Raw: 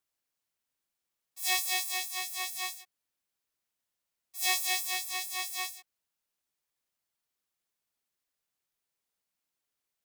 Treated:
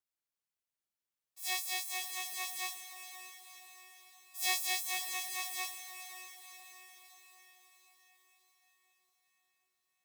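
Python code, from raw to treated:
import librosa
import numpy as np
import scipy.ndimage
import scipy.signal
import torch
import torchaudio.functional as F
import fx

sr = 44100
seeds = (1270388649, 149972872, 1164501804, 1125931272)

p1 = fx.rider(x, sr, range_db=10, speed_s=2.0)
p2 = fx.quant_float(p1, sr, bits=4)
p3 = p2 + fx.echo_diffused(p2, sr, ms=526, feedback_pct=55, wet_db=-10.0, dry=0)
y = p3 * 10.0 ** (-5.0 / 20.0)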